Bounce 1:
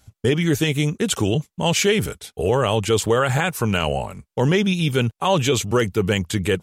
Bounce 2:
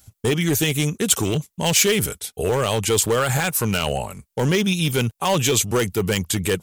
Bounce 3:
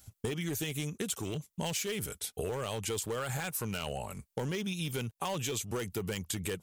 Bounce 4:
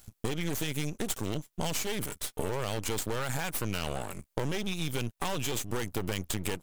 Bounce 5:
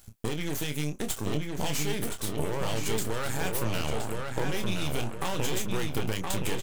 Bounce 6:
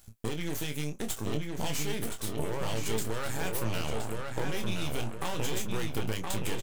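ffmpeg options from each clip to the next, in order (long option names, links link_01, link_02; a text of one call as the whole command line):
ffmpeg -i in.wav -af "volume=13dB,asoftclip=hard,volume=-13dB,aemphasis=mode=production:type=50kf,volume=-1dB" out.wav
ffmpeg -i in.wav -af "acompressor=threshold=-27dB:ratio=10,volume=-5dB" out.wav
ffmpeg -i in.wav -af "aeval=exprs='max(val(0),0)':channel_layout=same,volume=6dB" out.wav
ffmpeg -i in.wav -filter_complex "[0:a]asplit=2[link_01][link_02];[link_02]adelay=27,volume=-8dB[link_03];[link_01][link_03]amix=inputs=2:normalize=0,asplit=2[link_04][link_05];[link_05]adelay=1020,lowpass=frequency=3800:poles=1,volume=-3dB,asplit=2[link_06][link_07];[link_07]adelay=1020,lowpass=frequency=3800:poles=1,volume=0.42,asplit=2[link_08][link_09];[link_09]adelay=1020,lowpass=frequency=3800:poles=1,volume=0.42,asplit=2[link_10][link_11];[link_11]adelay=1020,lowpass=frequency=3800:poles=1,volume=0.42,asplit=2[link_12][link_13];[link_13]adelay=1020,lowpass=frequency=3800:poles=1,volume=0.42[link_14];[link_06][link_08][link_10][link_12][link_14]amix=inputs=5:normalize=0[link_15];[link_04][link_15]amix=inputs=2:normalize=0" out.wav
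ffmpeg -i in.wav -filter_complex "[0:a]asplit=2[link_01][link_02];[link_02]adelay=18,volume=-12.5dB[link_03];[link_01][link_03]amix=inputs=2:normalize=0,volume=-3dB" out.wav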